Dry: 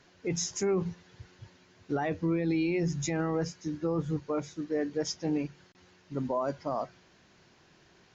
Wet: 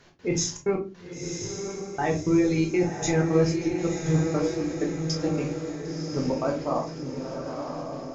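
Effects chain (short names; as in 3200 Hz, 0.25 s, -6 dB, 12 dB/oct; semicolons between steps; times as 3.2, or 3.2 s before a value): step gate "x.xxxx.x..x" 159 bpm -60 dB; diffused feedback echo 1.019 s, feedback 53%, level -5.5 dB; on a send at -1 dB: reverb RT60 0.30 s, pre-delay 12 ms; on the sum: gain +3.5 dB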